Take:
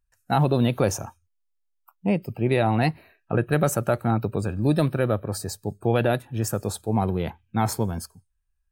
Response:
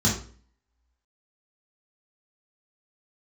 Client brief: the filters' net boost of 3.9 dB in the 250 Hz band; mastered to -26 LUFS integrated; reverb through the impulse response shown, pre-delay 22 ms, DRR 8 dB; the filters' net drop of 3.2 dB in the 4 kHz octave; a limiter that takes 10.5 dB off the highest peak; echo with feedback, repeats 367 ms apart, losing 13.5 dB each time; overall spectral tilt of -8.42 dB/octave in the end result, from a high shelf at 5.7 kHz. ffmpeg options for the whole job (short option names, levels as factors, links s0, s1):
-filter_complex "[0:a]equalizer=f=250:t=o:g=5,equalizer=f=4000:t=o:g=-6,highshelf=f=5700:g=5,alimiter=limit=0.15:level=0:latency=1,aecho=1:1:367|734:0.211|0.0444,asplit=2[s0][s1];[1:a]atrim=start_sample=2205,adelay=22[s2];[s1][s2]afir=irnorm=-1:irlink=0,volume=0.0944[s3];[s0][s3]amix=inputs=2:normalize=0,volume=0.631"